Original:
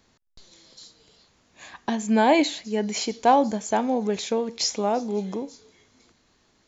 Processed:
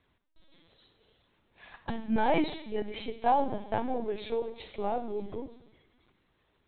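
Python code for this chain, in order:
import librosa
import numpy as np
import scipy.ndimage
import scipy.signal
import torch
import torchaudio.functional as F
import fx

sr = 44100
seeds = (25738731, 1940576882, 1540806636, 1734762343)

y = fx.rev_schroeder(x, sr, rt60_s=0.87, comb_ms=33, drr_db=9.5)
y = fx.lpc_vocoder(y, sr, seeds[0], excitation='pitch_kept', order=16)
y = y * librosa.db_to_amplitude(-7.5)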